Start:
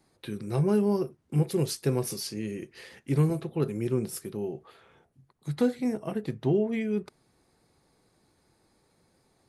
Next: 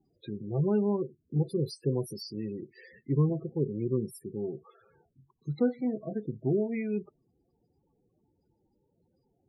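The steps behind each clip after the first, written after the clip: in parallel at -1.5 dB: vocal rider within 4 dB 2 s; on the sum: loudest bins only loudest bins 16; gain -8 dB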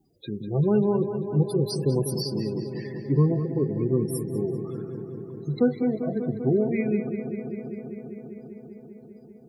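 high shelf 4600 Hz +8 dB; on a send: darkening echo 0.197 s, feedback 83%, low-pass 4300 Hz, level -9.5 dB; on the sum: gain +5 dB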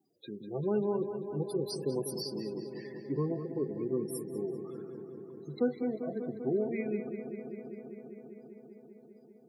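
HPF 240 Hz 12 dB/oct; bell 2800 Hz -2 dB; gain -6.5 dB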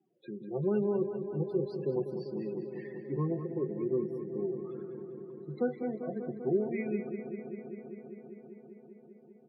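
elliptic band-pass 120–2900 Hz, stop band 40 dB; comb 5.5 ms, depth 49%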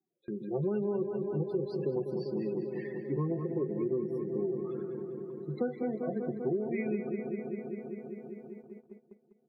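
gate -51 dBFS, range -16 dB; compressor 6:1, threshold -32 dBFS, peak gain reduction 9 dB; gain +4 dB

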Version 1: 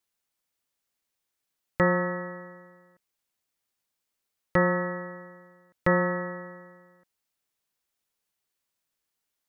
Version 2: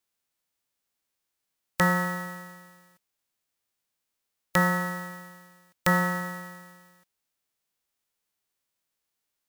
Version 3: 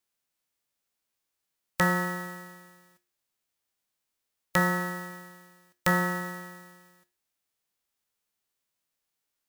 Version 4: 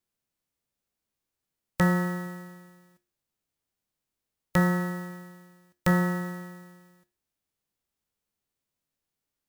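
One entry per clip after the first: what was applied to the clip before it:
spectral whitening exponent 0.3
resonator 71 Hz, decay 0.35 s, harmonics all, mix 60%; gain +4 dB
low shelf 450 Hz +11.5 dB; gain -4.5 dB

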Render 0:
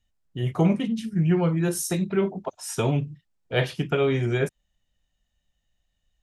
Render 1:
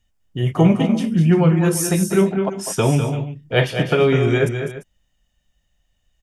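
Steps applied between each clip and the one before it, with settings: notch 4000 Hz, Q 8.7; tapped delay 0.2/0.226/0.344 s -8.5/-12/-15.5 dB; gain +6.5 dB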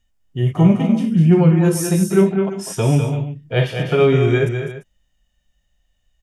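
harmonic-percussive split percussive -11 dB; gain +2.5 dB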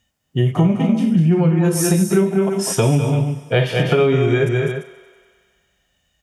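HPF 98 Hz 12 dB/oct; thinning echo 95 ms, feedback 74%, high-pass 250 Hz, level -20.5 dB; compressor 6:1, threshold -20 dBFS, peak gain reduction 12 dB; gain +7.5 dB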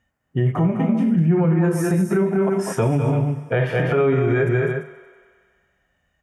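limiter -10.5 dBFS, peak gain reduction 6.5 dB; resonant high shelf 2500 Hz -11 dB, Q 1.5; notches 50/100/150/200 Hz

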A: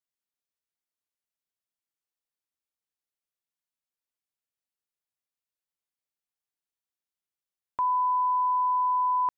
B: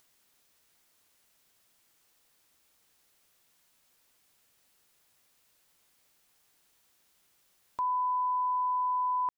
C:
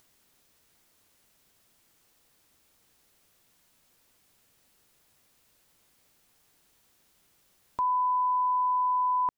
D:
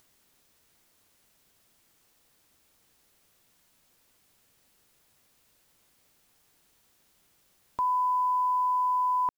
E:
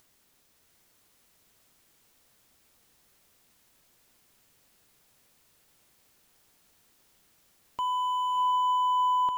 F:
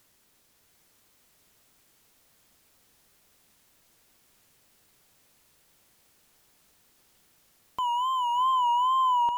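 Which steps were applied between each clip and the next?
upward compressor, threshold -42 dBFS; gain -4.5 dB
low shelf 480 Hz +7 dB; gain +2 dB
companded quantiser 8-bit
overloaded stage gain 27 dB; diffused feedback echo 0.694 s, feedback 47%, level -5 dB
wow and flutter 84 cents; gain +1.5 dB

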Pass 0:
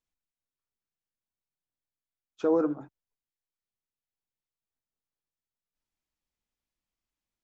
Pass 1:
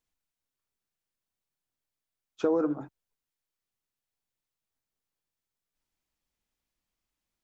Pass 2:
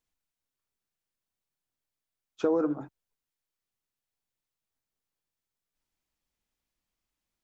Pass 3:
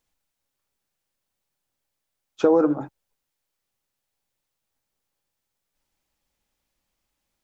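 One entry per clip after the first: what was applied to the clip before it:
compressor, threshold -26 dBFS, peak gain reduction 6.5 dB; gain +4 dB
nothing audible
small resonant body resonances 560/820 Hz, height 6 dB; gain +7.5 dB

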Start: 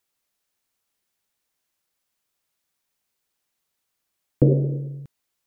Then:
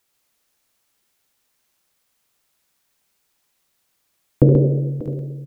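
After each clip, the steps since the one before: in parallel at -1.5 dB: compressor, threshold -26 dBFS, peak gain reduction 14 dB; on the sum: tapped delay 73/134/589/660 ms -10/-5/-16/-17 dB; gain +2 dB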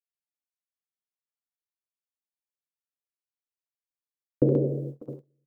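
HPF 200 Hz 12 dB/oct; gate -28 dBFS, range -30 dB; gain -5.5 dB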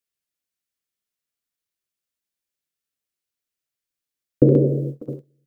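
bell 890 Hz -8.5 dB 0.93 oct; gain +8.5 dB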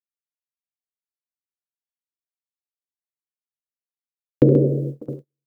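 gate -37 dBFS, range -23 dB

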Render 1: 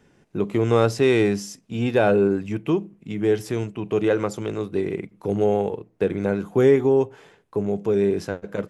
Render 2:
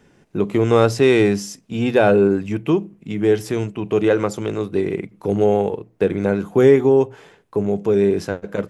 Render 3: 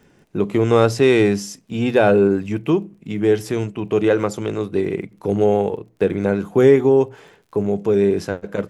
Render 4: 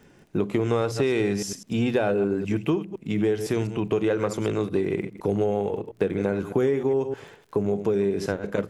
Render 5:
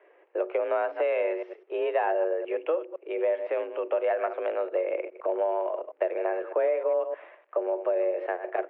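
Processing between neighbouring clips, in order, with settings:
notches 60/120 Hz; gain +4 dB
crackle 31/s -44 dBFS
reverse delay 0.102 s, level -12.5 dB; compressor 6:1, threshold -20 dBFS, peak gain reduction 12.5 dB
mistuned SSB +170 Hz 210–2400 Hz; gain -2.5 dB

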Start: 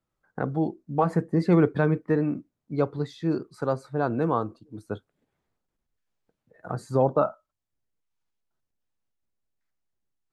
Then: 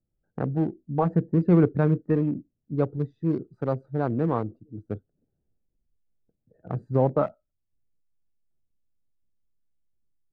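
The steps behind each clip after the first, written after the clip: Wiener smoothing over 41 samples; tilt -2 dB/oct; gain -2.5 dB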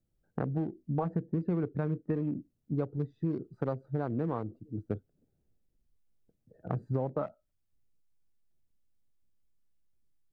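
compressor 6:1, threshold -30 dBFS, peak gain reduction 15.5 dB; gain +1.5 dB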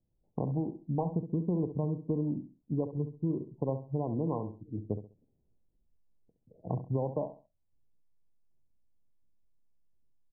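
brick-wall FIR low-pass 1100 Hz; feedback echo 67 ms, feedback 29%, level -11 dB

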